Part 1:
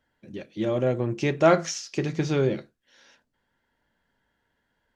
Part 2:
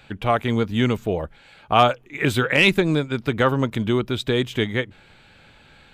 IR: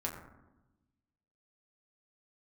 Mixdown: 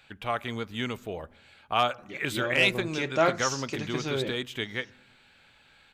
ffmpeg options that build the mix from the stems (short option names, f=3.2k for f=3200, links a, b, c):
-filter_complex "[0:a]adelay=1750,volume=-5dB[a];[1:a]volume=-11dB,asplit=2[b][c];[c]volume=-20dB[d];[2:a]atrim=start_sample=2205[e];[d][e]afir=irnorm=-1:irlink=0[f];[a][b][f]amix=inputs=3:normalize=0,tiltshelf=f=680:g=-5"